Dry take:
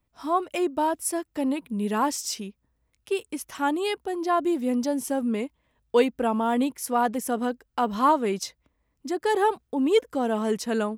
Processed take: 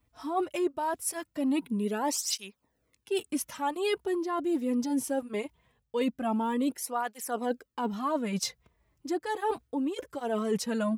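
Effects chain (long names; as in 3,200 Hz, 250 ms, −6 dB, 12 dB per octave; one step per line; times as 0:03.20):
reversed playback
downward compressor 10 to 1, threshold −30 dBFS, peak gain reduction 15 dB
reversed playback
through-zero flanger with one copy inverted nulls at 0.21 Hz, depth 5.5 ms
level +6 dB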